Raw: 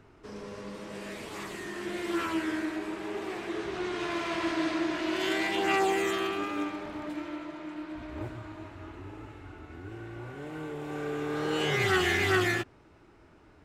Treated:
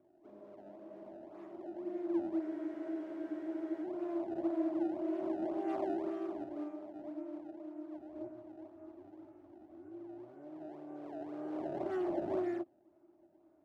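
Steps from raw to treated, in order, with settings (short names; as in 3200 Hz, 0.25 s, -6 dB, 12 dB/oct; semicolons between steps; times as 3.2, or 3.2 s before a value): decimation with a swept rate 23×, swing 160% 1.9 Hz; double band-pass 460 Hz, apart 0.85 oct; spectral freeze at 2.44, 1.40 s; gain -1.5 dB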